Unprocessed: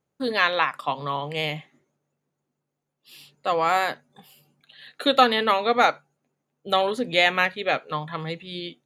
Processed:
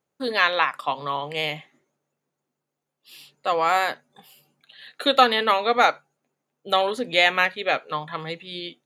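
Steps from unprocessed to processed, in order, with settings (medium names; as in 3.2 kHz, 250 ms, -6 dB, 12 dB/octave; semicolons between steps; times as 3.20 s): bass shelf 210 Hz -10 dB; trim +1.5 dB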